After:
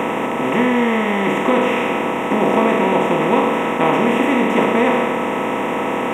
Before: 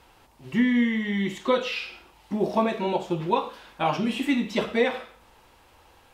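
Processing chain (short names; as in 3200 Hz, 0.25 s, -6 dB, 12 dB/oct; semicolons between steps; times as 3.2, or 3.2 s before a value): per-bin compression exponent 0.2; whine 1300 Hz -33 dBFS; Butterworth band-stop 4500 Hz, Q 1.4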